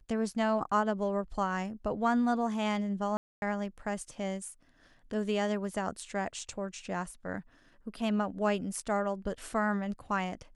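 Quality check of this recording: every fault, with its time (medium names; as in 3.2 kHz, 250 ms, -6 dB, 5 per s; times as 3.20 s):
3.17–3.42 s: dropout 251 ms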